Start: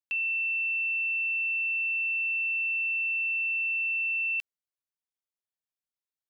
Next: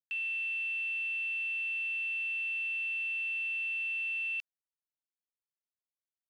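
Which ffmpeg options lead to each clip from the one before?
ffmpeg -i in.wav -af "afwtdn=0.0141,volume=-5.5dB" out.wav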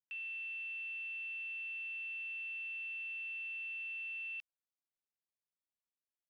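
ffmpeg -i in.wav -af "highshelf=frequency=4100:gain=-11,volume=-5dB" out.wav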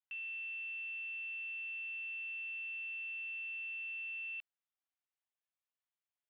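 ffmpeg -i in.wav -af "asuperpass=centerf=1500:order=12:qfactor=0.5" out.wav

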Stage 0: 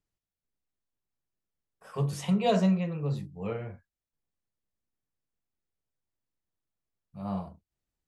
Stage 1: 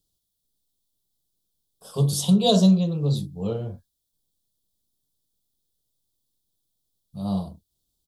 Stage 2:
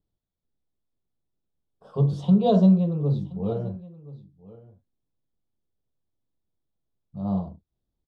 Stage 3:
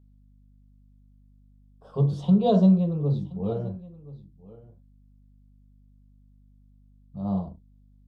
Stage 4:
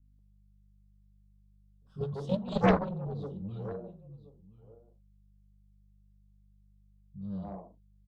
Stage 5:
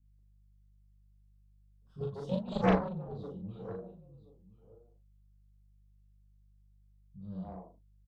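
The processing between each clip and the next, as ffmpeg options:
ffmpeg -i in.wav -af "firequalizer=gain_entry='entry(260,0);entry(1400,-13);entry(2100,-26);entry(3400,9);entry(6500,5);entry(9700,10)':delay=0.05:min_phase=1,volume=8dB" out.wav
ffmpeg -i in.wav -af "lowpass=1500,aecho=1:1:1025:0.106" out.wav
ffmpeg -i in.wav -af "aeval=exprs='val(0)+0.002*(sin(2*PI*50*n/s)+sin(2*PI*2*50*n/s)/2+sin(2*PI*3*50*n/s)/3+sin(2*PI*4*50*n/s)/4+sin(2*PI*5*50*n/s)/5)':channel_layout=same,volume=-1dB" out.wav
ffmpeg -i in.wav -filter_complex "[0:a]acrossover=split=250|1300[link_01][link_02][link_03];[link_03]adelay=50[link_04];[link_02]adelay=190[link_05];[link_01][link_05][link_04]amix=inputs=3:normalize=0,aeval=exprs='0.447*(cos(1*acos(clip(val(0)/0.447,-1,1)))-cos(1*PI/2))+0.126*(cos(7*acos(clip(val(0)/0.447,-1,1)))-cos(7*PI/2))':channel_layout=same,volume=-5.5dB" out.wav
ffmpeg -i in.wav -filter_complex "[0:a]asplit=2[link_01][link_02];[link_02]adelay=38,volume=-3.5dB[link_03];[link_01][link_03]amix=inputs=2:normalize=0,volume=-4.5dB" out.wav

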